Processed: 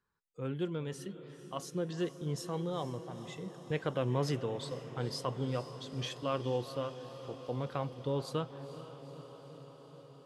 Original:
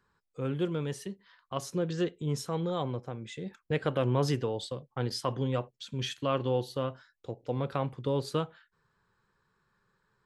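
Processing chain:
noise reduction from a noise print of the clip's start 7 dB
feedback delay with all-pass diffusion 463 ms, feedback 72%, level −13 dB
level −4.5 dB

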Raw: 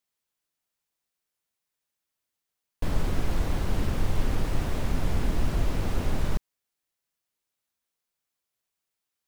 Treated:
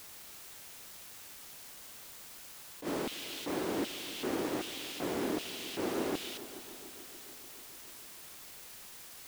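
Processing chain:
auto-filter high-pass square 1.3 Hz 330–3,100 Hz
echo machine with several playback heads 146 ms, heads second and third, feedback 61%, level −17 dB
bit-depth reduction 8 bits, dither triangular
level that may rise only so fast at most 220 dB per second
level −2 dB

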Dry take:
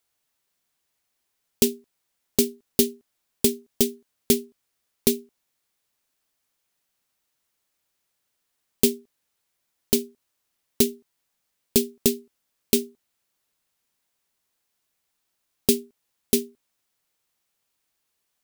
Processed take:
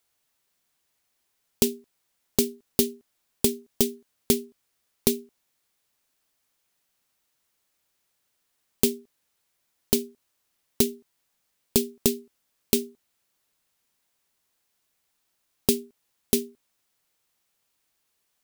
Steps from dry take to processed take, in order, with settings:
downward compressor 2 to 1, threshold −22 dBFS, peak gain reduction 5.5 dB
level +2 dB

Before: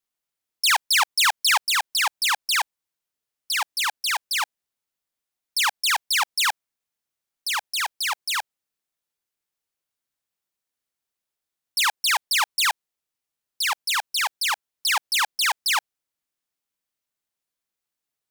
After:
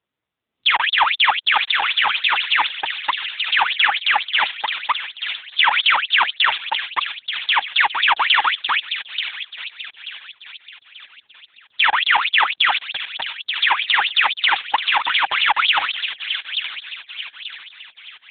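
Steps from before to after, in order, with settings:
delay that plays each chunk backwards 259 ms, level −9 dB
sample-and-hold tremolo
downward compressor 2.5 to 1, threshold −29 dBFS, peak gain reduction 8 dB
0:03.88–0:04.32: dynamic equaliser 690 Hz, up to +6 dB, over −52 dBFS, Q 0.77
0:11.86–0:12.59: linear-phase brick-wall high-pass 160 Hz
automatic gain control gain up to 11 dB
low-shelf EQ 280 Hz +12 dB
delay with a high-pass on its return 884 ms, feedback 42%, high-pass 2,900 Hz, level −5.5 dB
boost into a limiter +11.5 dB
level −1 dB
AMR narrowband 6.7 kbit/s 8,000 Hz

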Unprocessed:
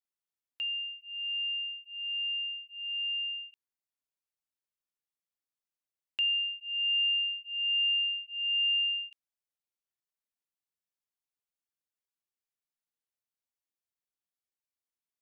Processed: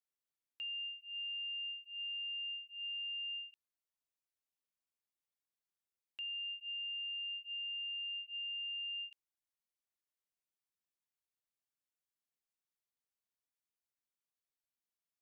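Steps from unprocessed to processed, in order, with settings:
brickwall limiter −34.5 dBFS, peak gain reduction 10.5 dB
level −4 dB

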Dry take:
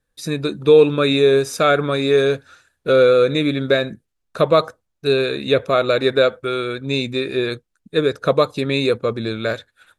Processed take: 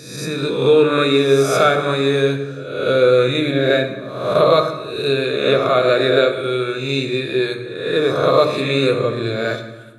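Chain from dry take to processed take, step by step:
peak hold with a rise ahead of every peak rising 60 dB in 0.93 s
high-pass filter 100 Hz
mains-hum notches 60/120/180/240/300/360/420 Hz
on a send: convolution reverb RT60 1.2 s, pre-delay 4 ms, DRR 4 dB
on the sum: level −2 dB

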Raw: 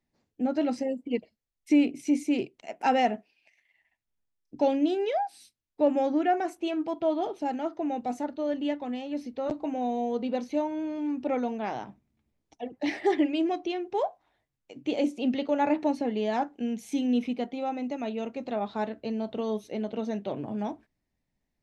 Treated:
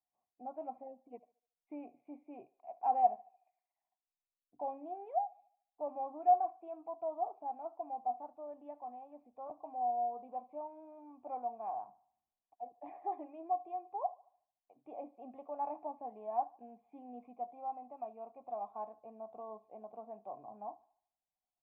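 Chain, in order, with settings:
formant resonators in series a
feedback echo with a high-pass in the loop 74 ms, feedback 47%, high-pass 300 Hz, level −21 dB

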